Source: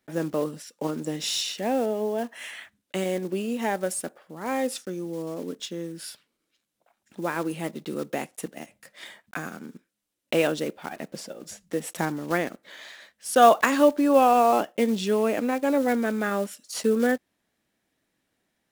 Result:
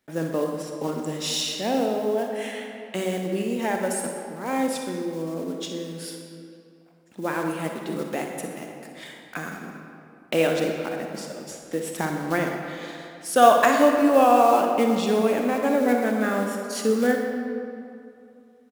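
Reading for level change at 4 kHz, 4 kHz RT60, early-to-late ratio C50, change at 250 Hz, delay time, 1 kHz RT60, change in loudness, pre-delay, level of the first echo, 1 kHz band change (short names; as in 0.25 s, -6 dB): +1.5 dB, 1.5 s, 2.5 dB, +2.0 dB, 61 ms, 2.6 s, +1.5 dB, 36 ms, -11.0 dB, +2.5 dB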